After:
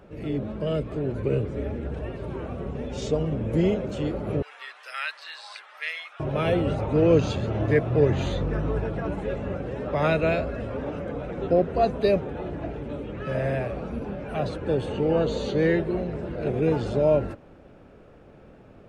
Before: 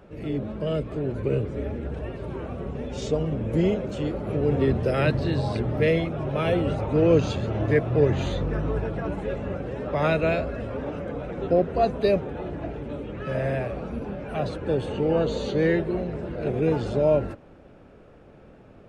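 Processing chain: 4.42–6.2 HPF 1200 Hz 24 dB/oct

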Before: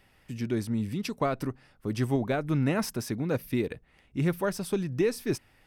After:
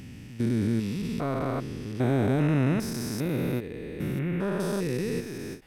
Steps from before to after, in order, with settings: stepped spectrum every 0.4 s; 4.19–4.6 resonant high shelf 3600 Hz -14 dB, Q 1.5; ending taper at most 230 dB/s; gain +6 dB

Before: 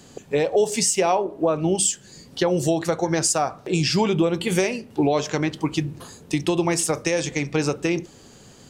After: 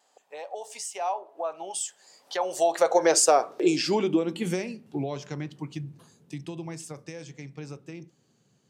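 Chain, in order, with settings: Doppler pass-by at 3.15, 9 m/s, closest 3.8 m; vibrato 0.54 Hz 9.7 cents; high-pass sweep 750 Hz -> 140 Hz, 2.52–5.05

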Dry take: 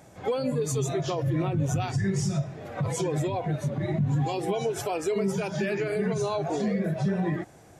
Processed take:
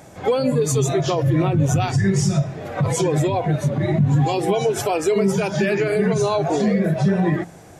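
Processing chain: de-hum 57.23 Hz, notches 4; gain +8.5 dB

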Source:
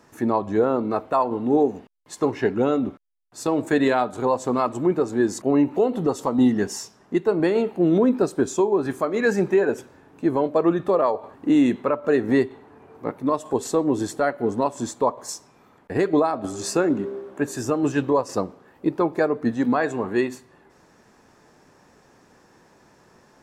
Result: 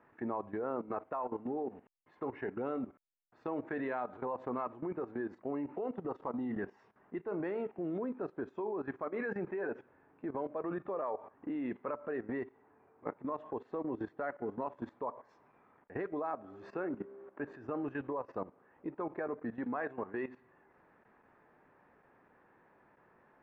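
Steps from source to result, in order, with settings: LPF 2200 Hz 24 dB/oct; low shelf 390 Hz -7.5 dB; level quantiser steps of 15 dB; gain -6 dB

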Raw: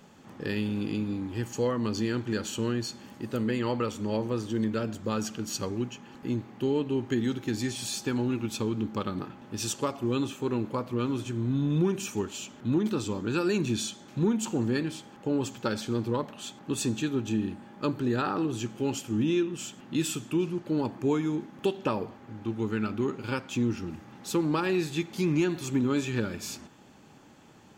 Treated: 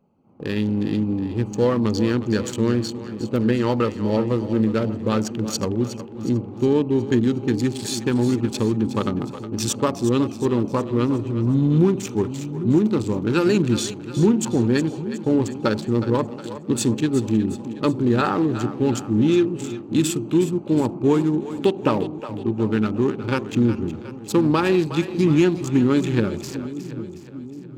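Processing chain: Wiener smoothing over 25 samples; AGC gain up to 9 dB; gate -39 dBFS, range -9 dB; split-band echo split 390 Hz, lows 0.8 s, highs 0.364 s, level -12 dB

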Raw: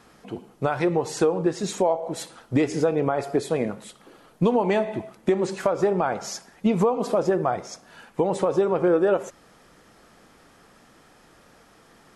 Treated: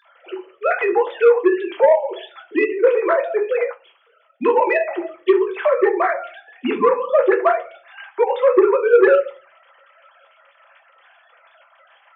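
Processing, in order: sine-wave speech; reverb RT60 0.30 s, pre-delay 5 ms, DRR 2 dB; soft clip -8 dBFS, distortion -19 dB; tilt +3.5 dB/oct; 3.7–4.44 upward expander 1.5:1, over -49 dBFS; gain +8.5 dB

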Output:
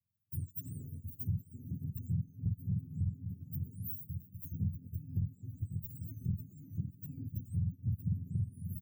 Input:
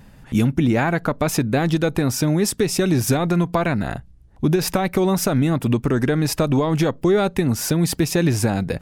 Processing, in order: spectrum mirrored in octaves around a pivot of 980 Hz; feedback echo 0.542 s, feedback 54%, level -16.5 dB; gate -38 dBFS, range -21 dB; inverse Chebyshev band-stop 700–5700 Hz, stop band 70 dB; high shelf 2300 Hz +10 dB; limiter -14 dBFS, peak gain reduction 10.5 dB; high shelf 8200 Hz -7 dB; band-limited delay 0.193 s, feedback 77%, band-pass 500 Hz, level -18.5 dB; compressor 3:1, threshold -39 dBFS, peak gain reduction 16 dB; three-band expander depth 40%; gain +1.5 dB

